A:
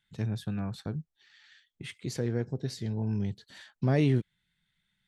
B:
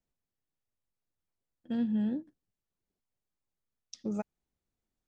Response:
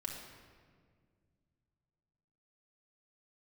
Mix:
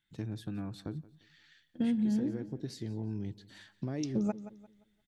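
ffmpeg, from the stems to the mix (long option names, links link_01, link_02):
-filter_complex "[0:a]equalizer=frequency=310:width=3.9:gain=11.5,acompressor=threshold=-29dB:ratio=6,volume=-4.5dB,asplit=2[link_01][link_02];[link_02]volume=-20dB[link_03];[1:a]lowshelf=frequency=330:gain=5.5,adelay=100,volume=2.5dB,asplit=2[link_04][link_05];[link_05]volume=-17dB[link_06];[link_03][link_06]amix=inputs=2:normalize=0,aecho=0:1:174|348|522|696:1|0.31|0.0961|0.0298[link_07];[link_01][link_04][link_07]amix=inputs=3:normalize=0,acompressor=threshold=-27dB:ratio=6"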